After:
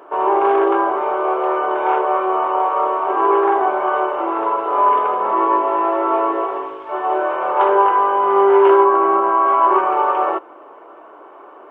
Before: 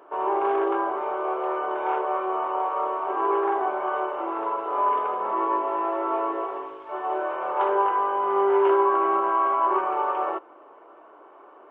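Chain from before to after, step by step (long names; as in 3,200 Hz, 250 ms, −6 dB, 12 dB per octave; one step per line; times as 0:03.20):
0:08.84–0:09.48: high-shelf EQ 2,300 Hz −9 dB
level +8.5 dB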